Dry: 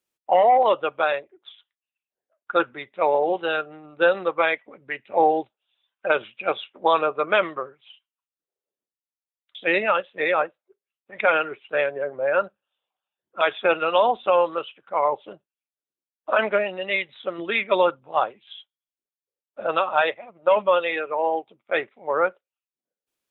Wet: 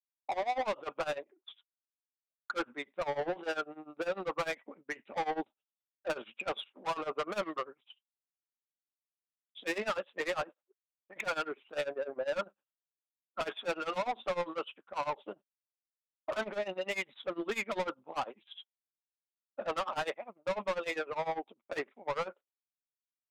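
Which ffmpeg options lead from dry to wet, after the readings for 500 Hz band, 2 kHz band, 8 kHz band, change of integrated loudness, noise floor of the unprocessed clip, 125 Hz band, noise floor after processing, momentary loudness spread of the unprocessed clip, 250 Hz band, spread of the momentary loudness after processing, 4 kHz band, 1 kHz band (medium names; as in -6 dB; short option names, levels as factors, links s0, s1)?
-14.0 dB, -13.5 dB, no reading, -14.0 dB, under -85 dBFS, -6.0 dB, under -85 dBFS, 10 LU, -9.5 dB, 9 LU, -10.0 dB, -14.5 dB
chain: -af "agate=range=0.0224:threshold=0.00631:ratio=3:detection=peak,equalizer=f=125:t=o:w=1:g=-11,equalizer=f=250:t=o:w=1:g=8,equalizer=f=1000:t=o:w=1:g=5,acompressor=threshold=0.158:ratio=3,asoftclip=type=tanh:threshold=0.0668,tremolo=f=10:d=0.91,volume=0.668"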